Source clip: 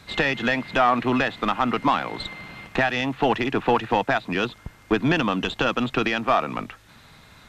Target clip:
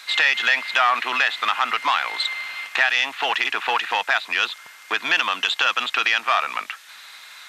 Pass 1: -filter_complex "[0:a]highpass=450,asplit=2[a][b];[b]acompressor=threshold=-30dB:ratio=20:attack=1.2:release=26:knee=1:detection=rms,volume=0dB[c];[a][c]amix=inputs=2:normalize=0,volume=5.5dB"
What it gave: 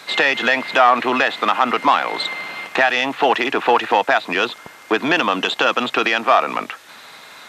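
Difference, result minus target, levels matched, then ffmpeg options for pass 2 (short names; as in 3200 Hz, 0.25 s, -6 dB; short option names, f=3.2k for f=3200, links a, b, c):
500 Hz band +11.0 dB
-filter_complex "[0:a]highpass=1.5k,asplit=2[a][b];[b]acompressor=threshold=-30dB:ratio=20:attack=1.2:release=26:knee=1:detection=rms,volume=0dB[c];[a][c]amix=inputs=2:normalize=0,volume=5.5dB"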